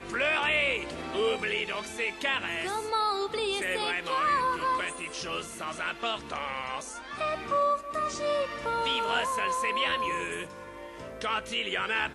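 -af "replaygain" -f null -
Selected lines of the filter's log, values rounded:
track_gain = +9.4 dB
track_peak = 0.124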